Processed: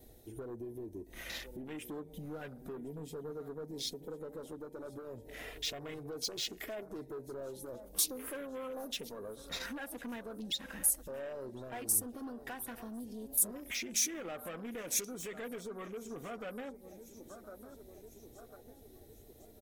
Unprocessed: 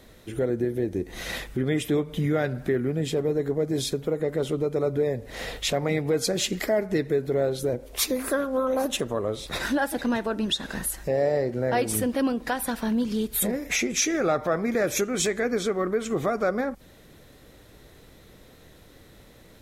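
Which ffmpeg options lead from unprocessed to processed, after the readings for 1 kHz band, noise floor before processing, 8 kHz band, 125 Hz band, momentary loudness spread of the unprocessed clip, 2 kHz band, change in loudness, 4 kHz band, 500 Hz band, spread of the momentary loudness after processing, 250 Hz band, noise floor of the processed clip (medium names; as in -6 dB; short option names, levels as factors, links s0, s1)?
-17.0 dB, -52 dBFS, -4.5 dB, -20.0 dB, 5 LU, -15.0 dB, -12.0 dB, -9.5 dB, -18.5 dB, 21 LU, -17.5 dB, -57 dBFS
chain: -af "aecho=1:1:1051|2102|3153|4204:0.15|0.0748|0.0374|0.0187,aeval=exprs='0.266*(cos(1*acos(clip(val(0)/0.266,-1,1)))-cos(1*PI/2))+0.015*(cos(7*acos(clip(val(0)/0.266,-1,1)))-cos(7*PI/2))':c=same,asoftclip=type=tanh:threshold=0.0422,acompressor=threshold=0.00178:ratio=2,bandreject=f=7300:w=22,afwtdn=0.00224,highshelf=f=2800:g=9,flanger=delay=2.7:depth=1.6:regen=-45:speed=0.16:shape=sinusoidal,acompressor=mode=upward:threshold=0.001:ratio=2.5,aemphasis=mode=production:type=50fm,agate=range=0.0224:threshold=0.00112:ratio=3:detection=peak,volume=1.88"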